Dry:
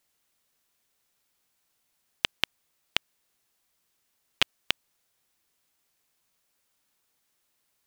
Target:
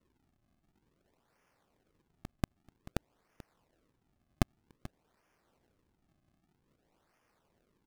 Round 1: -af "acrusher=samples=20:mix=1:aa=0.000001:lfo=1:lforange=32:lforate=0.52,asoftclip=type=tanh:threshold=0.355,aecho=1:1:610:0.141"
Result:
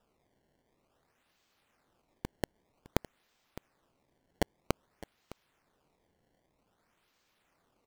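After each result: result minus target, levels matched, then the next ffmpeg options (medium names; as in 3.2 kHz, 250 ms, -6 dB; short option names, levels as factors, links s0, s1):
decimation with a swept rate: distortion -39 dB; echo 174 ms late
-af "acrusher=samples=53:mix=1:aa=0.000001:lfo=1:lforange=84.8:lforate=0.52,asoftclip=type=tanh:threshold=0.355,aecho=1:1:610:0.141"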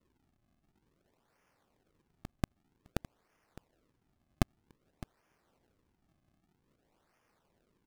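echo 174 ms late
-af "acrusher=samples=53:mix=1:aa=0.000001:lfo=1:lforange=84.8:lforate=0.52,asoftclip=type=tanh:threshold=0.355,aecho=1:1:436:0.141"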